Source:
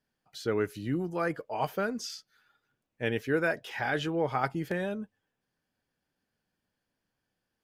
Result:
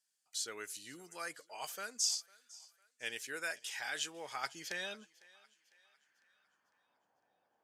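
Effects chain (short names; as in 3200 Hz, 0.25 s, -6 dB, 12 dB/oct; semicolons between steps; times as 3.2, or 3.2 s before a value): band-pass sweep 7900 Hz -> 760 Hz, 4.3–7.16; thinning echo 0.502 s, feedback 48%, high-pass 590 Hz, level -22 dB; gain +14 dB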